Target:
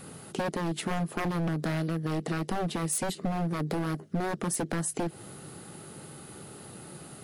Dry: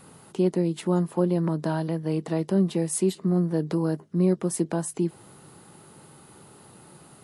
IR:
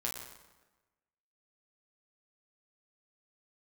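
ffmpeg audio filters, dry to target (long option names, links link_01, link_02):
-af "aeval=exprs='0.0708*(abs(mod(val(0)/0.0708+3,4)-2)-1)':channel_layout=same,equalizer=frequency=970:width_type=o:width=0.35:gain=-8.5,acompressor=threshold=-32dB:ratio=6,volume=5dB"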